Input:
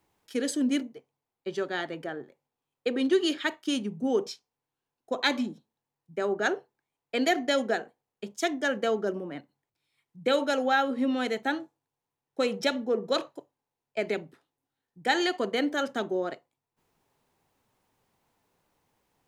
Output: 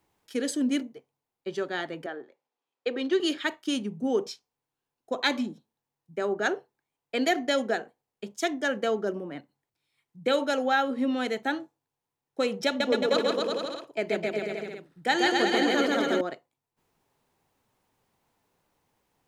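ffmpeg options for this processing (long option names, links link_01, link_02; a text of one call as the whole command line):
ffmpeg -i in.wav -filter_complex "[0:a]asettb=1/sr,asplit=3[link_01][link_02][link_03];[link_01]atrim=end=2.064[link_04];[link_02]atrim=start=2.06:end=3.2,asetpts=PTS-STARTPTS,afade=type=in:duration=0.004:curve=qsin,afade=type=out:start_time=1.136:duration=0.004:curve=qsin,acrossover=split=260 7000:gain=0.112 1 0.0631[link_05][link_06][link_07];[link_05][link_06][link_07]amix=inputs=3:normalize=0[link_08];[link_03]atrim=start=3.196[link_09];[link_04][link_08]acrossfade=duration=0.004:curve1=hsin:curve2=qsin[link_10];[link_10][link_09]acrossfade=duration=0.004:curve1=qsin:curve2=hsin,asettb=1/sr,asplit=3[link_11][link_12][link_13];[link_11]atrim=end=12.664[link_14];[link_12]atrim=start=12.66:end=16.21,asetpts=PTS-STARTPTS,afade=type=in:duration=0.004:curve=qsin,afade=type=out:start_time=3.546:duration=0.004:curve=qsin,aecho=1:1:140|259|360.2|446.1|519.2|581.3|634.1:0.794|0.631|0.501|0.398|0.316|0.251|0.2,atrim=end_sample=156555[link_15];[link_13]atrim=start=16.206[link_16];[link_14][link_15]acrossfade=duration=0.004:curve1=hsin:curve2=qsin[link_17];[link_17][link_16]acrossfade=duration=0.004:curve1=qsin:curve2=hsin" out.wav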